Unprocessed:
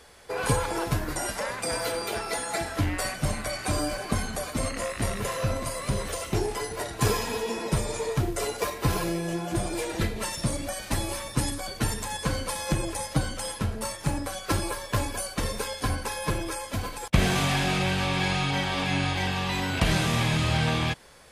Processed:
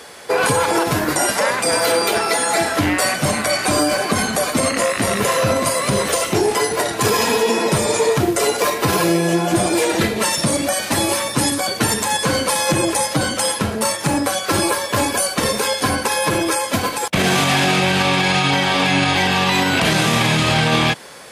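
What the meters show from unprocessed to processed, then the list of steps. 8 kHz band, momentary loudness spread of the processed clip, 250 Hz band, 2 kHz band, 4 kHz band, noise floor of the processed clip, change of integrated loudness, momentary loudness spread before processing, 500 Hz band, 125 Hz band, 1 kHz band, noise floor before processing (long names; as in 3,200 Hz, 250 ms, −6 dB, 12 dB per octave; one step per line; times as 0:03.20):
+13.0 dB, 3 LU, +10.5 dB, +12.0 dB, +12.0 dB, −27 dBFS, +11.0 dB, 6 LU, +12.5 dB, +4.5 dB, +12.5 dB, −40 dBFS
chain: high-pass filter 170 Hz 12 dB per octave
boost into a limiter +20.5 dB
level −6 dB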